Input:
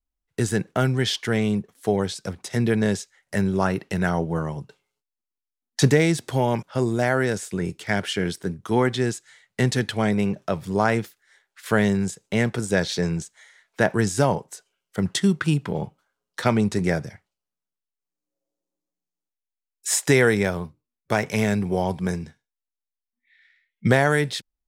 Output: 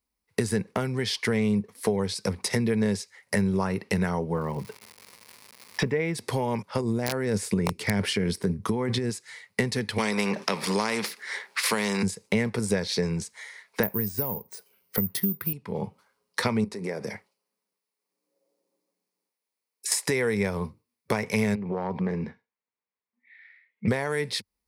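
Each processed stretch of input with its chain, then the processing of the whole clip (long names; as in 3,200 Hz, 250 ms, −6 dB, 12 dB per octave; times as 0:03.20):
0:04.34–0:06.14: Savitzky-Golay smoothing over 25 samples + surface crackle 320 per second −41 dBFS
0:06.81–0:09.10: low-shelf EQ 400 Hz +6.5 dB + compressor whose output falls as the input rises −22 dBFS + wrap-around overflow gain 10.5 dB
0:09.98–0:12.03: Butterworth high-pass 170 Hz + high-shelf EQ 8,200 Hz −11 dB + every bin compressed towards the loudest bin 2 to 1
0:13.83–0:15.53: low-shelf EQ 390 Hz +7.5 dB + bad sample-rate conversion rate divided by 3×, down filtered, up zero stuff
0:16.64–0:19.92: high-pass filter 190 Hz + parametric band 470 Hz +5 dB 1.8 octaves + downward compressor 8 to 1, threshold −34 dBFS
0:21.55–0:23.88: phase distortion by the signal itself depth 0.16 ms + downward compressor 10 to 1, threshold −28 dBFS + band-pass filter 150–2,100 Hz
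whole clip: high-pass filter 82 Hz; downward compressor 6 to 1, threshold −32 dBFS; EQ curve with evenly spaced ripples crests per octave 0.89, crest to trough 7 dB; level +7.5 dB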